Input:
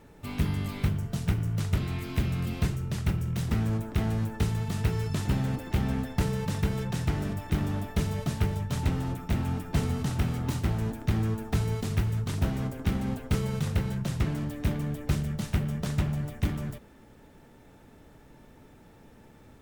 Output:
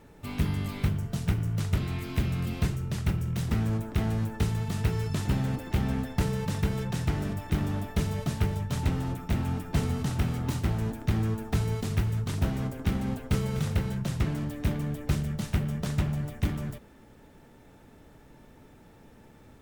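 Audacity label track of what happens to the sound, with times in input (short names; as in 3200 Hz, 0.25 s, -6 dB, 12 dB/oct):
13.060000	13.490000	echo throw 0.25 s, feedback 25%, level -11.5 dB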